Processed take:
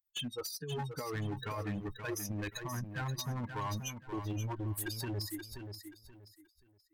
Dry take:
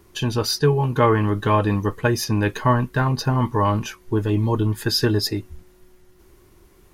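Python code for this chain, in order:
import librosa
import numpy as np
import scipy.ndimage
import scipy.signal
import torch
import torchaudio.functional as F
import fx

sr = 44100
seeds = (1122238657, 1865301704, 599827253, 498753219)

p1 = fx.bin_expand(x, sr, power=2.0)
p2 = scipy.signal.lfilter([1.0, -0.8], [1.0], p1)
p3 = fx.noise_reduce_blind(p2, sr, reduce_db=18)
p4 = fx.high_shelf(p3, sr, hz=11000.0, db=5.0)
p5 = fx.over_compress(p4, sr, threshold_db=-38.0, ratio=-1.0)
p6 = np.clip(10.0 ** (36.0 / 20.0) * p5, -1.0, 1.0) / 10.0 ** (36.0 / 20.0)
p7 = p6 + fx.echo_feedback(p6, sr, ms=529, feedback_pct=27, wet_db=-8, dry=0)
y = F.gain(torch.from_numpy(p7), 2.0).numpy()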